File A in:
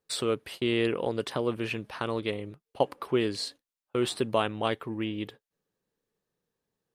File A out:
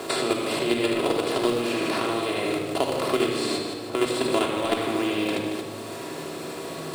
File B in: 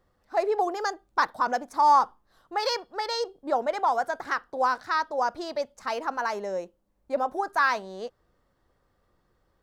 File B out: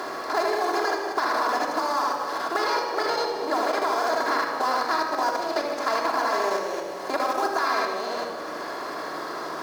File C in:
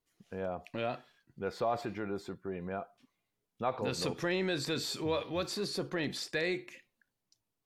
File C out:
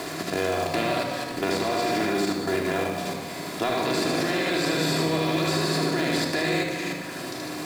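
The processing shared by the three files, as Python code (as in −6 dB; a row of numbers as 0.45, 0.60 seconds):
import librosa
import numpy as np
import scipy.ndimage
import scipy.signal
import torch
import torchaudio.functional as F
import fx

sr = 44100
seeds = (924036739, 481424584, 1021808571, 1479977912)

p1 = fx.bin_compress(x, sr, power=0.4)
p2 = scipy.signal.sosfilt(scipy.signal.butter(2, 110.0, 'highpass', fs=sr, output='sos'), p1)
p3 = p2 + fx.echo_feedback(p2, sr, ms=76, feedback_pct=57, wet_db=-3, dry=0)
p4 = fx.level_steps(p3, sr, step_db=10)
p5 = fx.high_shelf(p4, sr, hz=7700.0, db=6.5)
p6 = fx.comb_fb(p5, sr, f0_hz=160.0, decay_s=0.43, harmonics='all', damping=0.0, mix_pct=60)
p7 = fx.room_shoebox(p6, sr, seeds[0], volume_m3=3700.0, walls='furnished', distance_m=3.1)
p8 = fx.quant_companded(p7, sr, bits=4)
p9 = p7 + (p8 * librosa.db_to_amplitude(-11.0))
p10 = fx.band_squash(p9, sr, depth_pct=70)
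y = p10 * 10.0 ** (-26 / 20.0) / np.sqrt(np.mean(np.square(p10)))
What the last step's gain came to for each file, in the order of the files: +3.5, −1.5, +6.0 decibels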